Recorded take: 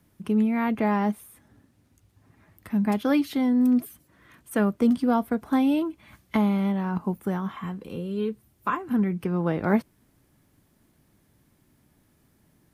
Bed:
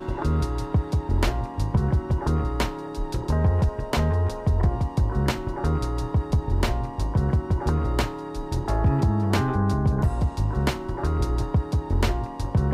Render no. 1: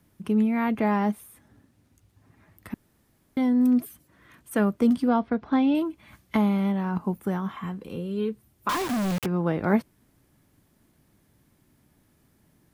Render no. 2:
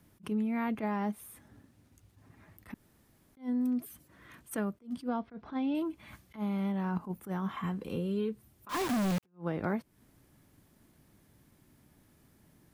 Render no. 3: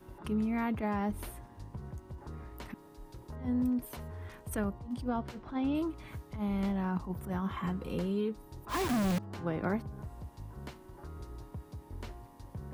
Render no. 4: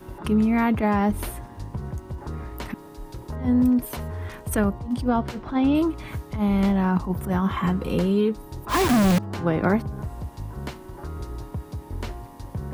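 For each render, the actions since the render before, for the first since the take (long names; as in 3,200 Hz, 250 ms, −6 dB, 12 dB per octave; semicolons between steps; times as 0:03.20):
0:02.74–0:03.37: fill with room tone; 0:05.08–0:05.75: low-pass filter 4,700 Hz 24 dB per octave; 0:08.69–0:09.26: log-companded quantiser 2 bits
downward compressor 6 to 1, threshold −29 dBFS, peak gain reduction 13 dB; level that may rise only so fast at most 260 dB per second
mix in bed −21.5 dB
level +11.5 dB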